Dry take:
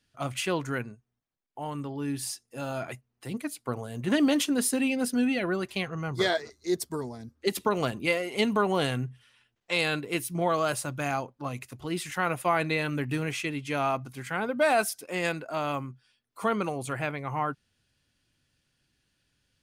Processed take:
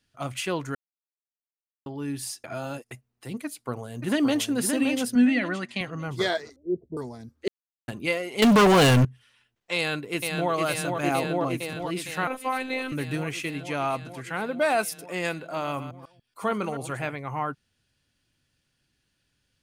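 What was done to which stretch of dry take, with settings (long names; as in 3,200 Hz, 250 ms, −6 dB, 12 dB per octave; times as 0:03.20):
0:00.75–0:01.86: silence
0:02.44–0:02.91: reverse
0:03.45–0:04.47: delay throw 570 ms, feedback 30%, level −5.5 dB
0:05.15–0:05.81: loudspeaker in its box 150–8,700 Hz, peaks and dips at 240 Hz +9 dB, 400 Hz −9 dB, 1,900 Hz +9 dB, 6,000 Hz −3 dB
0:06.56–0:06.97: Butterworth low-pass 580 Hz
0:07.48–0:07.88: silence
0:08.42–0:09.05: leveller curve on the samples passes 5
0:09.76–0:10.52: delay throw 460 ms, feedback 80%, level −4 dB
0:11.03–0:11.71: parametric band 350 Hz +7.5 dB 2.1 octaves
0:12.27–0:12.92: phases set to zero 260 Hz
0:13.72–0:14.40: low-pass filter 12,000 Hz
0:15.34–0:17.16: delay that plays each chunk backwards 143 ms, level −11 dB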